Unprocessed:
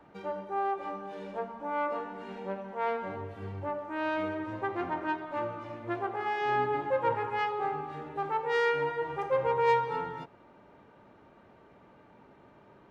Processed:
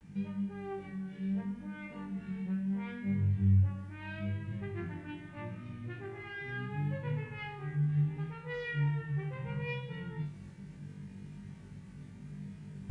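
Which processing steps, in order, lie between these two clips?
in parallel at -2 dB: compression 12:1, threshold -42 dBFS, peak gain reduction 21.5 dB; on the sum: low-pass 3.1 kHz 12 dB/octave; high-order bell 850 Hz -14 dB; bit crusher 11-bit; resonant low shelf 230 Hz +10 dB, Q 3; reverse; upward compressor, threshold -35 dBFS; reverse; vibrato 0.74 Hz 63 cents; flutter echo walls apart 3.5 m, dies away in 0.42 s; trim -8 dB; AAC 48 kbps 22.05 kHz

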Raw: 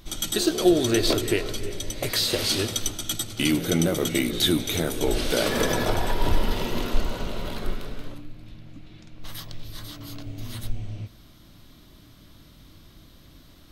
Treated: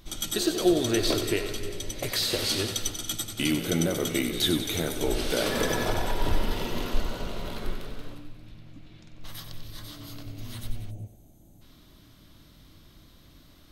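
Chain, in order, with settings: thinning echo 93 ms, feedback 62%, level -9.5 dB; time-frequency box 10.91–11.62 s, 910–6000 Hz -17 dB; trim -3.5 dB

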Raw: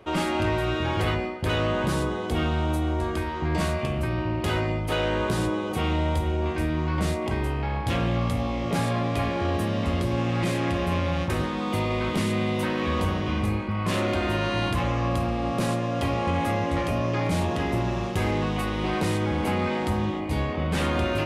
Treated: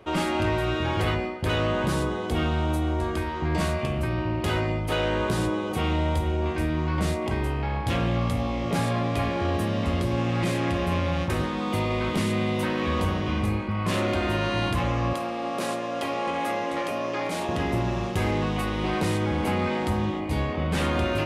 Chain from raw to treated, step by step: 15.13–17.49 s: high-pass 320 Hz 12 dB/octave

